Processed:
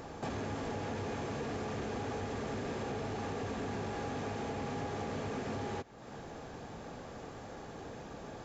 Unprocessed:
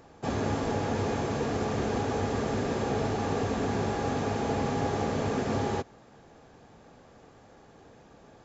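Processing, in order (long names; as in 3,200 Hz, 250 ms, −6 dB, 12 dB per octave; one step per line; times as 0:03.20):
dynamic equaliser 2,300 Hz, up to +3 dB, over −48 dBFS, Q 1
downward compressor 5 to 1, threshold −44 dBFS, peak gain reduction 17.5 dB
soft clipping −38 dBFS, distortion −19 dB
level +8 dB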